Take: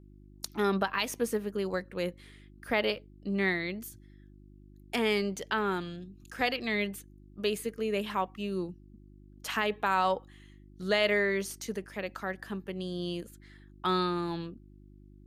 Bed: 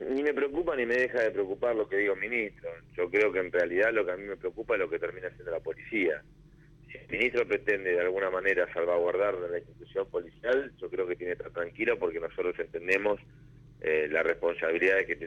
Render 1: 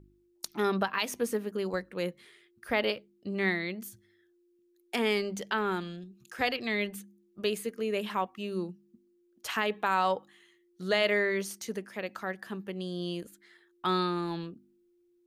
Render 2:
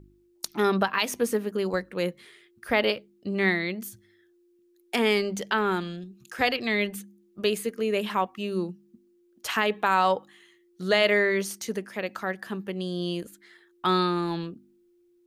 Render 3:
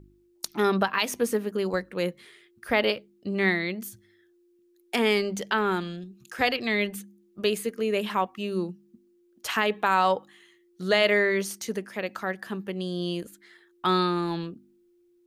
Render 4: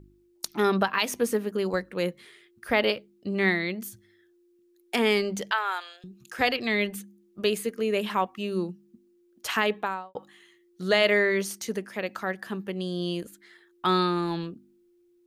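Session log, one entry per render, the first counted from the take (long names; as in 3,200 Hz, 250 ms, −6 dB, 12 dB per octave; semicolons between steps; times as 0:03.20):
hum removal 50 Hz, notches 6
level +5 dB
no processing that can be heard
0:05.51–0:06.04: inverse Chebyshev high-pass filter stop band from 190 Hz, stop band 60 dB; 0:09.66–0:10.15: fade out and dull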